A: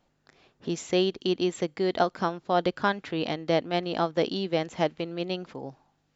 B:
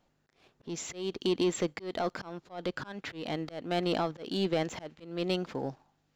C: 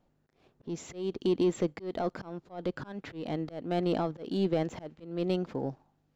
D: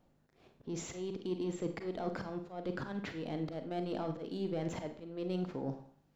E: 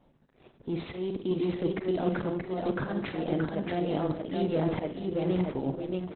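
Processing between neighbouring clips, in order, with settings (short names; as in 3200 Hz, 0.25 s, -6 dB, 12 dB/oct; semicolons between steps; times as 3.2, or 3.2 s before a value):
limiter -20 dBFS, peak gain reduction 11.5 dB; sample leveller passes 1; auto swell 0.285 s
tilt shelf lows +5.5 dB; gain -2.5 dB
reverse; compressor 6:1, threshold -36 dBFS, peak gain reduction 12.5 dB; reverse; Schroeder reverb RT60 0.45 s, combs from 33 ms, DRR 6.5 dB; gain +1 dB
feedback echo 0.627 s, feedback 29%, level -3 dB; gain +8 dB; Opus 8 kbps 48000 Hz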